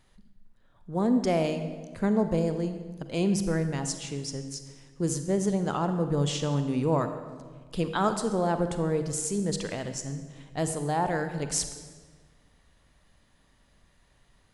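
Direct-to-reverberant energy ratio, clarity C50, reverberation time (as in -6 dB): 8.0 dB, 8.5 dB, 1.5 s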